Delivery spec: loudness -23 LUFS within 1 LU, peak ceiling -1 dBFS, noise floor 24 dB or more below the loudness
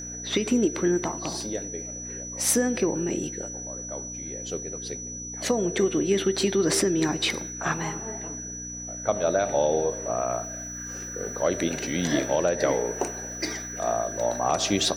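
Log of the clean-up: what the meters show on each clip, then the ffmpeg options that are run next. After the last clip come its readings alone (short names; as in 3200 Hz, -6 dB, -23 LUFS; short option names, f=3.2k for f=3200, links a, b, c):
hum 60 Hz; harmonics up to 300 Hz; hum level -39 dBFS; steady tone 5900 Hz; tone level -35 dBFS; loudness -27.0 LUFS; peak -11.0 dBFS; loudness target -23.0 LUFS
-> -af "bandreject=f=60:t=h:w=4,bandreject=f=120:t=h:w=4,bandreject=f=180:t=h:w=4,bandreject=f=240:t=h:w=4,bandreject=f=300:t=h:w=4"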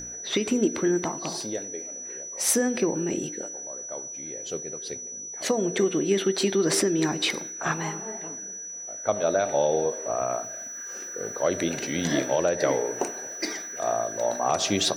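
hum none; steady tone 5900 Hz; tone level -35 dBFS
-> -af "bandreject=f=5.9k:w=30"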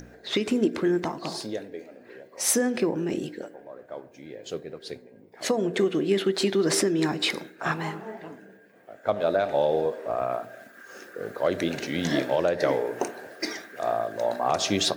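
steady tone none; loudness -27.0 LUFS; peak -11.5 dBFS; loudness target -23.0 LUFS
-> -af "volume=4dB"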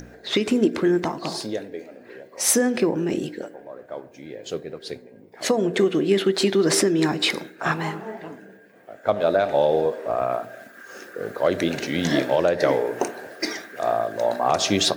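loudness -23.0 LUFS; peak -7.5 dBFS; noise floor -48 dBFS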